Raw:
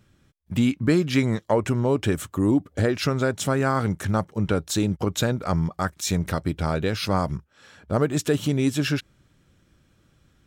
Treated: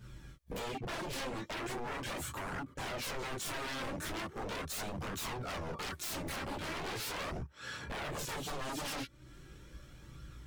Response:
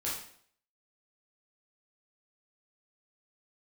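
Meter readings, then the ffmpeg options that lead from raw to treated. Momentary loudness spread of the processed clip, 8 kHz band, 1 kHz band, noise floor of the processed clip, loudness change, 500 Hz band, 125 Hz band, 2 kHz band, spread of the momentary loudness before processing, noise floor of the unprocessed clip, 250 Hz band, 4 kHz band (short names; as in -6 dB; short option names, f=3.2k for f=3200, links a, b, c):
15 LU, -9.5 dB, -10.5 dB, -56 dBFS, -15.5 dB, -17.0 dB, -20.5 dB, -9.0 dB, 4 LU, -63 dBFS, -21.0 dB, -8.5 dB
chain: -filter_complex "[1:a]atrim=start_sample=2205,atrim=end_sample=3087[a];[0:a][a]afir=irnorm=-1:irlink=0,acompressor=threshold=-37dB:ratio=3,aeval=exprs='0.0119*(abs(mod(val(0)/0.0119+3,4)-2)-1)':c=same,flanger=delay=0.6:depth=3.2:regen=56:speed=0.39:shape=triangular,volume=8dB"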